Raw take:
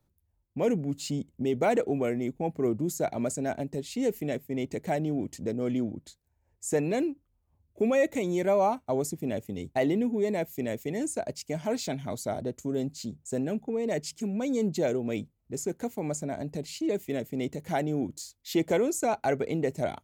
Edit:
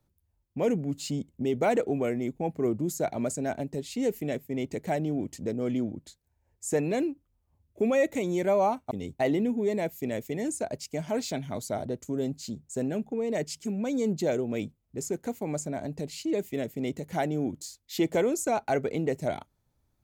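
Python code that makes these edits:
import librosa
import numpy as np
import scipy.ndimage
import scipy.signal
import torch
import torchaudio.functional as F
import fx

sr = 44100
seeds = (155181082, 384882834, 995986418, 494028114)

y = fx.edit(x, sr, fx.cut(start_s=8.91, length_s=0.56), tone=tone)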